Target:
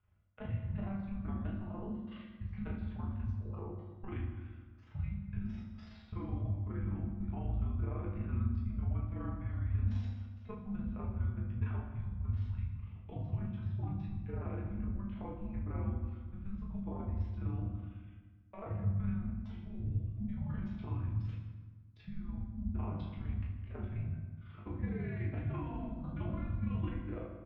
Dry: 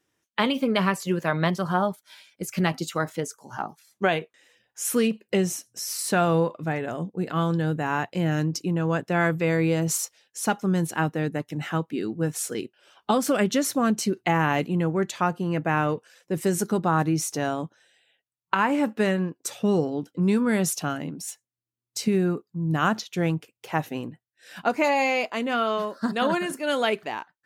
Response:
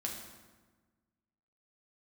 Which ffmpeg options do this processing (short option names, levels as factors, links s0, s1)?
-filter_complex "[0:a]tiltshelf=f=700:g=8.5,highpass=f=270:t=q:w=0.5412,highpass=f=270:t=q:w=1.307,lowpass=f=3500:t=q:w=0.5176,lowpass=f=3500:t=q:w=0.7071,lowpass=f=3500:t=q:w=1.932,afreqshift=-390,areverse,acompressor=threshold=0.0158:ratio=5,areverse,alimiter=level_in=3.35:limit=0.0631:level=0:latency=1:release=195,volume=0.299,tremolo=f=24:d=0.974,equalizer=f=94:w=3.3:g=11,aecho=1:1:20|34:0.631|0.531[s0];[1:a]atrim=start_sample=2205,asetrate=42336,aresample=44100[s1];[s0][s1]afir=irnorm=-1:irlink=0,volume=1.19"